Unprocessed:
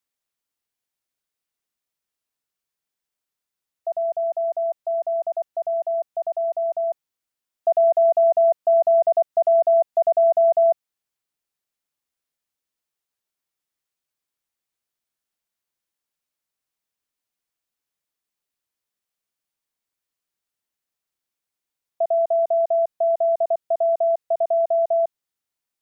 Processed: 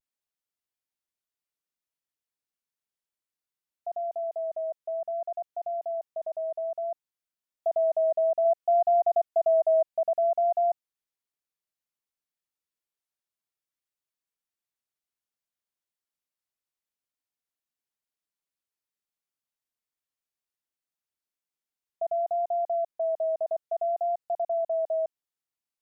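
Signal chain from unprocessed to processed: 8.44–9.87 s: comb 2.8 ms, depth 46%; vibrato 0.59 Hz 61 cents; trim -8 dB

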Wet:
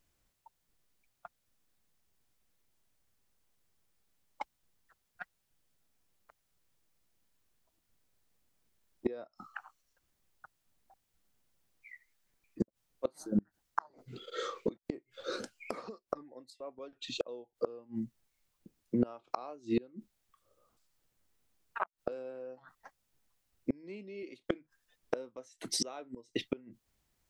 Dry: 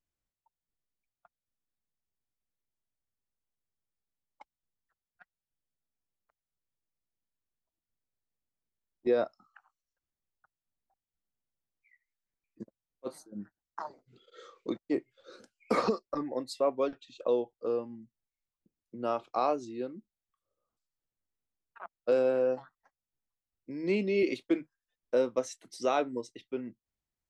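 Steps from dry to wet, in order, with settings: inverted gate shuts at -32 dBFS, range -31 dB; trim +14 dB

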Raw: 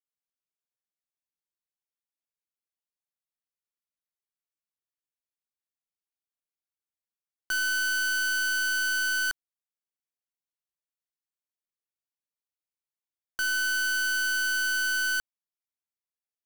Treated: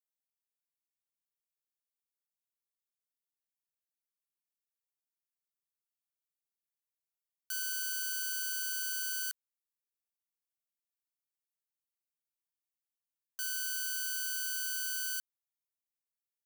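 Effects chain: pre-emphasis filter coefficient 0.97; trim -3.5 dB

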